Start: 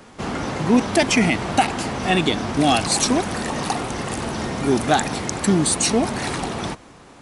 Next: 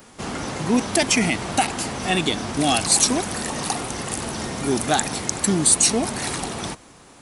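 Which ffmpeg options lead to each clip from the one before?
-af "aemphasis=mode=production:type=50kf,volume=-3.5dB"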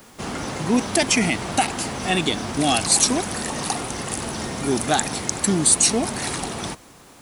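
-af "acrusher=bits=8:mix=0:aa=0.000001"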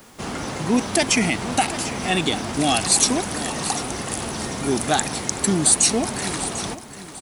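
-af "aecho=1:1:745|1490|2235|2980:0.2|0.0738|0.0273|0.0101"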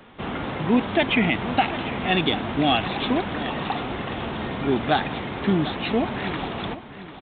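-af "aresample=8000,aresample=44100"

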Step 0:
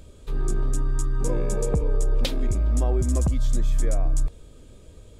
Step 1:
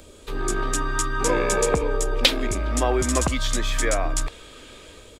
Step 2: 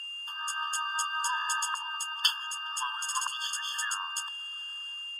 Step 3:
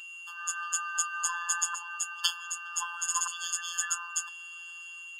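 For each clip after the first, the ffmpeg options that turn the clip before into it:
-filter_complex "[0:a]firequalizer=gain_entry='entry(130,0);entry(290,10);entry(1800,13)':delay=0.05:min_phase=1,acrossover=split=150|1000|4400[a][b][c][d];[c]dynaudnorm=f=110:g=9:m=11.5dB[e];[a][b][e][d]amix=inputs=4:normalize=0,volume=-4.5dB"
-af "aeval=exprs='val(0)+0.0224*sin(2*PI*2800*n/s)':c=same,afftfilt=real='re*eq(mod(floor(b*sr/1024/890),2),1)':imag='im*eq(mod(floor(b*sr/1024/890),2),1)':win_size=1024:overlap=0.75,volume=-3.5dB"
-af "equalizer=f=6.9k:w=4.1:g=11,afftfilt=real='hypot(re,im)*cos(PI*b)':imag='0':win_size=1024:overlap=0.75"

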